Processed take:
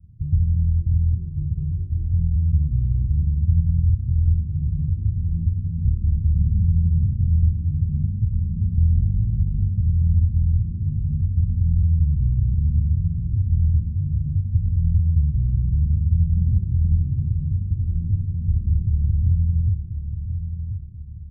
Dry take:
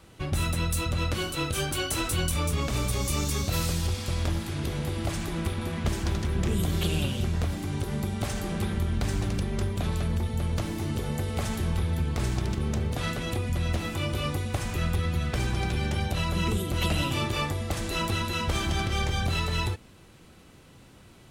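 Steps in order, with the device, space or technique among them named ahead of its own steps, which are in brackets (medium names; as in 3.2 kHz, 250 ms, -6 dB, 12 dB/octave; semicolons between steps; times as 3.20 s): the neighbour's flat through the wall (low-pass 150 Hz 24 dB/octave; peaking EQ 87 Hz +4 dB 0.97 oct); feedback delay 1035 ms, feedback 39%, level -8.5 dB; trim +7 dB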